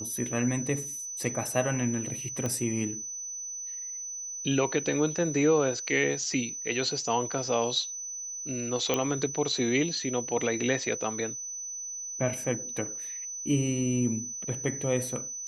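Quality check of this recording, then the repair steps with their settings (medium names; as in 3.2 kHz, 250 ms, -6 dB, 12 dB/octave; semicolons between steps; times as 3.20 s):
whine 6 kHz -35 dBFS
2.46 s: pop -18 dBFS
8.94 s: pop -11 dBFS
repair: de-click; band-stop 6 kHz, Q 30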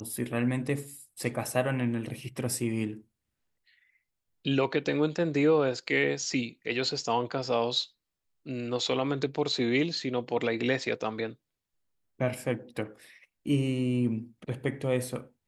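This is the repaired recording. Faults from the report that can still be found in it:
nothing left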